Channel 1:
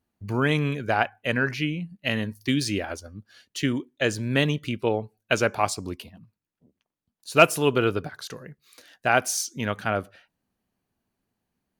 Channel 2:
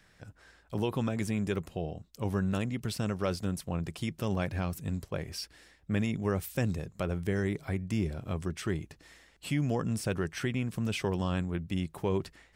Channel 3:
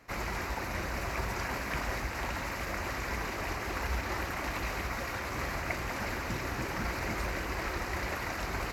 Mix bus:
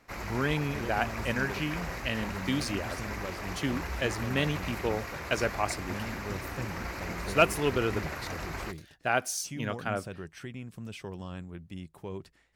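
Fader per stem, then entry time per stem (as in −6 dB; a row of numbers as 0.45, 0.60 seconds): −6.5, −9.5, −3.0 decibels; 0.00, 0.00, 0.00 seconds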